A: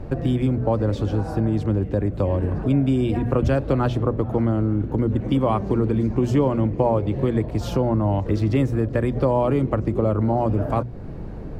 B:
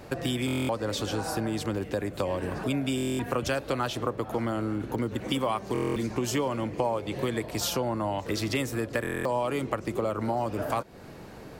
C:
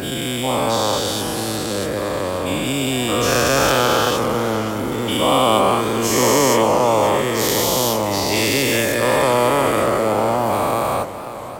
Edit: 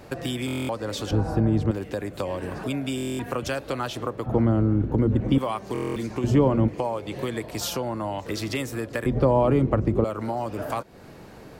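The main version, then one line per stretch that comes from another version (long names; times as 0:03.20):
B
0:01.11–0:01.71: punch in from A
0:04.26–0:05.38: punch in from A
0:06.24–0:06.68: punch in from A
0:09.06–0:10.04: punch in from A
not used: C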